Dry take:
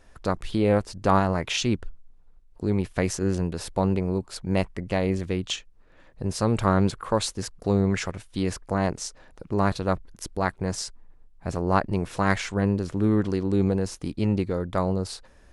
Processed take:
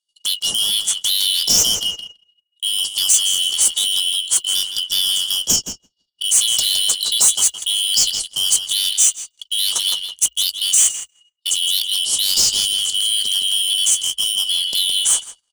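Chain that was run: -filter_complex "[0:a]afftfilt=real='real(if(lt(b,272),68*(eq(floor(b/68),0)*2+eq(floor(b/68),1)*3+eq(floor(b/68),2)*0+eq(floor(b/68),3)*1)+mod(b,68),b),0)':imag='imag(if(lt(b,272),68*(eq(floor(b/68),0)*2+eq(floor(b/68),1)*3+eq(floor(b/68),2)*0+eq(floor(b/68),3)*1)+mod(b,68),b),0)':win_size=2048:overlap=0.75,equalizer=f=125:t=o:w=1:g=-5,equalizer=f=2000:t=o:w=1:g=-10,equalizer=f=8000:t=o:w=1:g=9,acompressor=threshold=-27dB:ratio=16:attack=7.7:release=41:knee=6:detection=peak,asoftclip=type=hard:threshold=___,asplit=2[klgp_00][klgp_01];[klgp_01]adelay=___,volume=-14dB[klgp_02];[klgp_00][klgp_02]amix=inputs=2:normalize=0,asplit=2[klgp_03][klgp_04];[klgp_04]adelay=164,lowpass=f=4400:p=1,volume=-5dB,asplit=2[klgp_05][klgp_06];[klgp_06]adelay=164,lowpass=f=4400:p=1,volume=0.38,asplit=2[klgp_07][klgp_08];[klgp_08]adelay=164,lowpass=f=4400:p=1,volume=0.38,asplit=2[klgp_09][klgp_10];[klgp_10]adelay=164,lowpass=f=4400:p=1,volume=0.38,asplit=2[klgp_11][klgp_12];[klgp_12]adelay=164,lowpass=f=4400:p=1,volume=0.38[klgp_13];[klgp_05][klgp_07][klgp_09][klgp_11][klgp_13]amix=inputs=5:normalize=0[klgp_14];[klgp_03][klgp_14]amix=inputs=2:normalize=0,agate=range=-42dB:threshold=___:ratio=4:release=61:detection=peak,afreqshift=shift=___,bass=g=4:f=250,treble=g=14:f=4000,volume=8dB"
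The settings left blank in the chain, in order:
-29dB, 19, -39dB, -61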